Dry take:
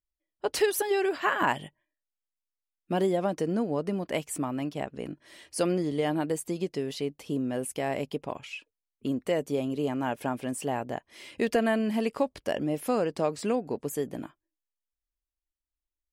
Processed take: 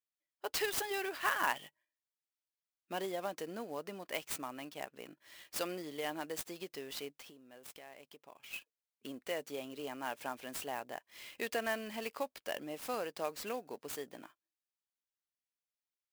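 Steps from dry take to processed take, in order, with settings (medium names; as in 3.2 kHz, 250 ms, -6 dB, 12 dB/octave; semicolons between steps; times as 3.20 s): 7.14–8.54 s: compression 6:1, threshold -41 dBFS, peak gain reduction 14.5 dB; high-pass 1.4 kHz 6 dB/octave; sampling jitter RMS 0.024 ms; trim -2.5 dB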